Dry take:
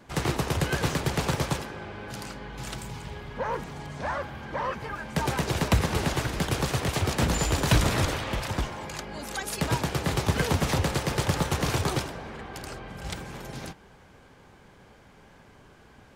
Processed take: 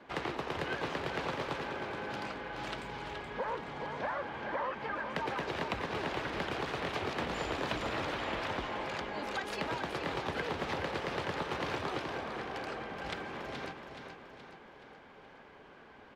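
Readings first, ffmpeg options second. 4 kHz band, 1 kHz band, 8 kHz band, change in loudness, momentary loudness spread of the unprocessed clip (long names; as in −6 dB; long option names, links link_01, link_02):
−8.5 dB, −4.5 dB, −20.0 dB, −8.0 dB, 14 LU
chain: -filter_complex "[0:a]acrossover=split=240 4100:gain=0.2 1 0.0794[link_01][link_02][link_03];[link_01][link_02][link_03]amix=inputs=3:normalize=0,acompressor=threshold=-33dB:ratio=6,aecho=1:1:424|848|1272|1696|2120|2544:0.447|0.219|0.107|0.0526|0.0258|0.0126"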